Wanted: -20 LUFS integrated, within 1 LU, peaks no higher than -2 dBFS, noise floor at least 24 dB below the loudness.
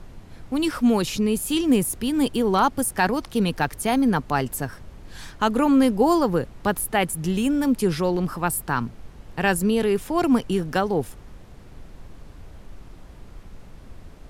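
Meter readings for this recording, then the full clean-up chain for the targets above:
noise floor -45 dBFS; noise floor target -47 dBFS; loudness -22.5 LUFS; peak -7.5 dBFS; loudness target -20.0 LUFS
-> noise print and reduce 6 dB; gain +2.5 dB

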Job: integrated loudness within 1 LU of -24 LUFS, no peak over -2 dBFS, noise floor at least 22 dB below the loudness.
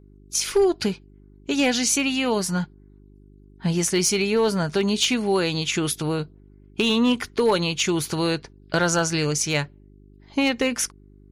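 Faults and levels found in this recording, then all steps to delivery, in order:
clipped 0.3%; flat tops at -12.5 dBFS; hum 50 Hz; harmonics up to 400 Hz; hum level -44 dBFS; loudness -22.5 LUFS; peak -12.5 dBFS; loudness target -24.0 LUFS
-> clip repair -12.5 dBFS; de-hum 50 Hz, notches 8; gain -1.5 dB

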